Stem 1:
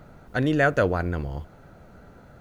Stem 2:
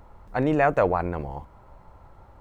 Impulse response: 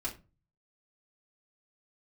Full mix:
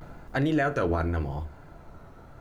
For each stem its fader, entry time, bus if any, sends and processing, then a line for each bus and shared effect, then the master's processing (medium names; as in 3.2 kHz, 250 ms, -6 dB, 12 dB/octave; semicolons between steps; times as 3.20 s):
+3.0 dB, 0.00 s, send -14 dB, vibrato 0.84 Hz 93 cents; auto duck -7 dB, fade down 0.35 s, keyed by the second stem
-2.0 dB, 0.00 s, no send, compression, threshold -29 dBFS, peak gain reduction 13 dB; peaking EQ 360 Hz -7 dB 1.9 oct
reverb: on, RT60 0.30 s, pre-delay 3 ms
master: peak limiter -16.5 dBFS, peak gain reduction 7.5 dB